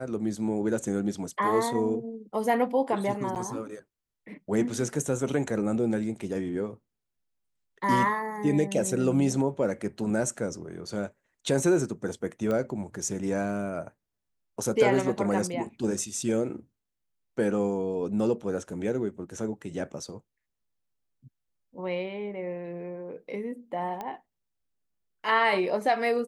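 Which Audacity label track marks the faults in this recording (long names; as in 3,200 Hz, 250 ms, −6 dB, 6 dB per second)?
3.350000	3.360000	drop-out 8.6 ms
12.510000	12.510000	click −19 dBFS
24.010000	24.010000	click −22 dBFS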